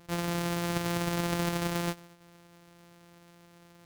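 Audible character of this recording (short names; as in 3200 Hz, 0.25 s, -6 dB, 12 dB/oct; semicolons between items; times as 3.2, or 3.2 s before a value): a buzz of ramps at a fixed pitch in blocks of 256 samples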